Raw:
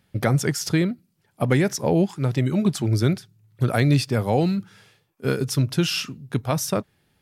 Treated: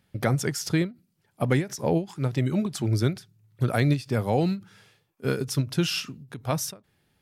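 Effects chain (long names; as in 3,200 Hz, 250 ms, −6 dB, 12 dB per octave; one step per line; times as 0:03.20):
every ending faded ahead of time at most 230 dB per second
level −3 dB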